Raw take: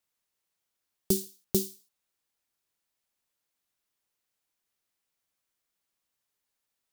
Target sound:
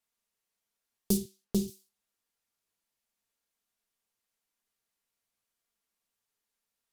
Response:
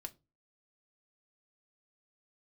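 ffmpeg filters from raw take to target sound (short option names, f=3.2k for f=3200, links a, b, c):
-filter_complex "[0:a]asettb=1/sr,asplit=3[a][b][c];[a]atrim=end=1.174[d];[b]atrim=start=1.17:end=1.68,asetpts=PTS-STARTPTS,afade=t=in:d=0.004:c=qsin,afade=t=out:st=0.506:d=0.004:c=qsin,lowpass=f=4k:p=1[e];[c]atrim=start=1.676[f];[d][e]acrossfade=d=0.004:c1=hsin:c2=qsin[g];[g][f]acrossfade=d=0.004:c1=qsin:c2=hsin[h];[1:a]atrim=start_sample=2205,atrim=end_sample=4410,asetrate=27783,aresample=44100[i];[h][i]afir=irnorm=-1:irlink=0"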